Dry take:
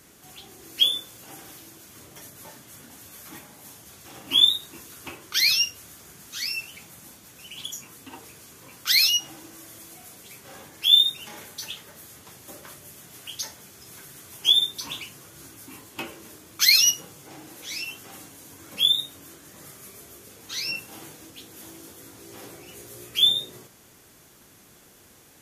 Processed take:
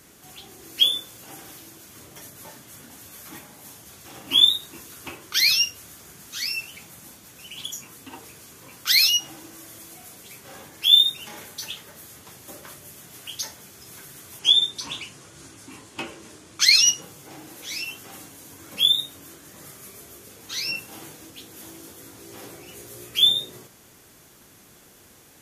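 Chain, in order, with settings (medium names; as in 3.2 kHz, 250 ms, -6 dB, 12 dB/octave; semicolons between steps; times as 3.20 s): 14.39–17.02 s: low-pass 9.7 kHz 24 dB/octave; trim +1.5 dB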